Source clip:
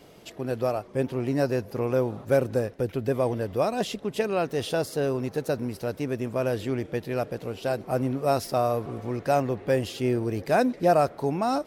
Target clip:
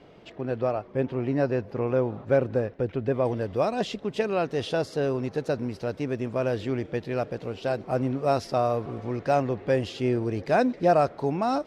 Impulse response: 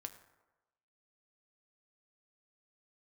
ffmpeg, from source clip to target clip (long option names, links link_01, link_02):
-af "asetnsamples=nb_out_samples=441:pad=0,asendcmd='3.25 lowpass f 5400',lowpass=3000"